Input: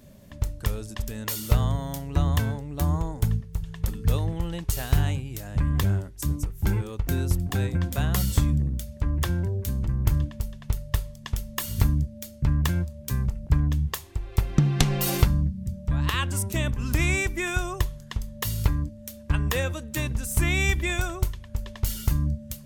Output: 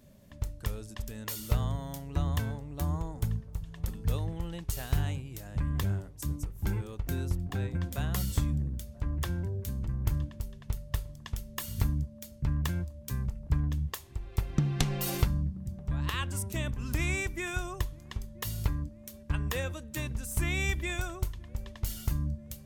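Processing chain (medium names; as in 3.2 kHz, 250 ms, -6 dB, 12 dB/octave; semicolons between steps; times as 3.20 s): 7.29–7.75 s: treble shelf 5.3 kHz -9.5 dB; feedback echo behind a low-pass 982 ms, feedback 52%, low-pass 1 kHz, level -22 dB; trim -7 dB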